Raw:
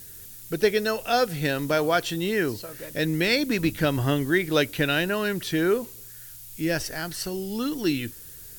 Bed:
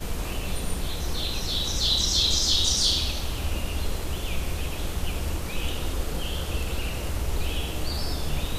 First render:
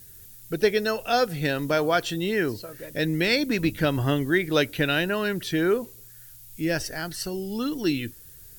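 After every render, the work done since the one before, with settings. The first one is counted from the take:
broadband denoise 6 dB, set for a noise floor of −44 dBFS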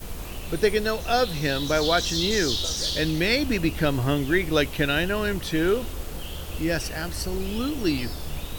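mix in bed −5 dB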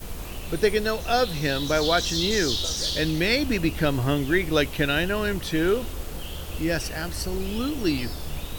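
no processing that can be heard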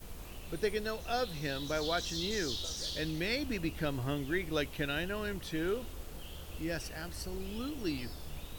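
level −11.5 dB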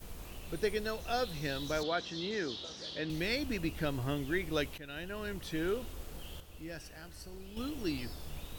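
0:01.83–0:03.10: band-pass filter 160–3,400 Hz
0:04.78–0:05.74: fade in equal-power, from −16.5 dB
0:06.40–0:07.57: tuned comb filter 150 Hz, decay 1.5 s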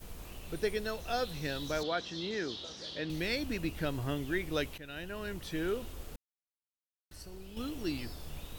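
0:06.16–0:07.11: silence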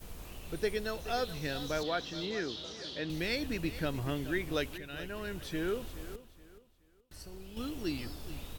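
repeating echo 424 ms, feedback 29%, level −14.5 dB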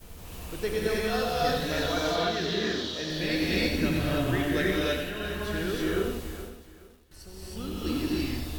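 reverb whose tail is shaped and stops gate 350 ms rising, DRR −6 dB
feedback echo at a low word length 90 ms, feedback 35%, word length 9 bits, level −7 dB

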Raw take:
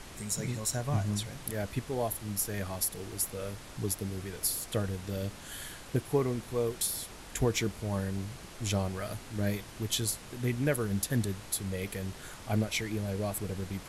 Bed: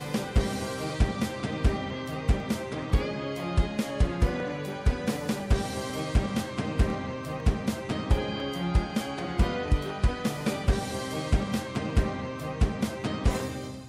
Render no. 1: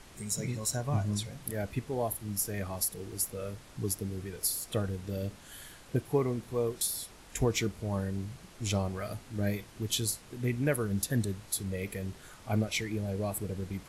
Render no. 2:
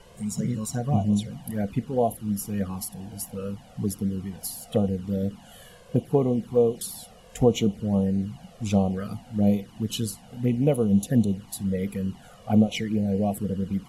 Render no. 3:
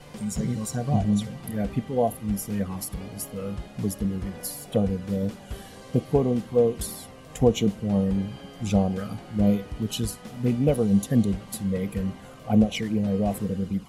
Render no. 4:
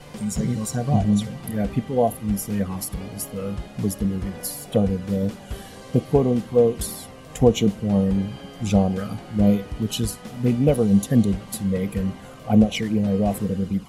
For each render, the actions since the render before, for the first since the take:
noise reduction from a noise print 6 dB
hollow resonant body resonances 210/500/710/2,900 Hz, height 14 dB, ringing for 30 ms; flanger swept by the level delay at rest 2.1 ms, full sweep at −18 dBFS
mix in bed −12.5 dB
level +3.5 dB

